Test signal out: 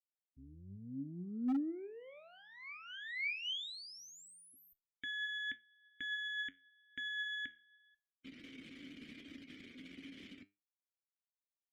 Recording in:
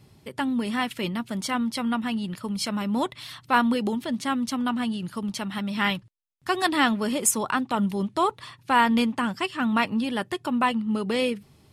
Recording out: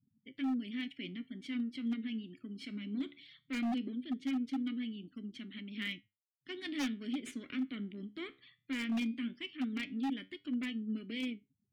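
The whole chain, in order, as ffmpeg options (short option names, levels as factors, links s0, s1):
-filter_complex "[0:a]aeval=exprs='if(lt(val(0),0),0.251*val(0),val(0))':c=same,afftfilt=real='re*gte(hypot(re,im),0.00631)':imag='im*gte(hypot(re,im),0.00631)':win_size=1024:overlap=0.75,asplit=3[s0][s1][s2];[s0]bandpass=f=270:t=q:w=8,volume=1[s3];[s1]bandpass=f=2290:t=q:w=8,volume=0.501[s4];[s2]bandpass=f=3010:t=q:w=8,volume=0.355[s5];[s3][s4][s5]amix=inputs=3:normalize=0,flanger=delay=8.7:depth=6.1:regen=75:speed=0.18:shape=triangular,aeval=exprs='0.0188*(abs(mod(val(0)/0.0188+3,4)-2)-1)':c=same,volume=1.88"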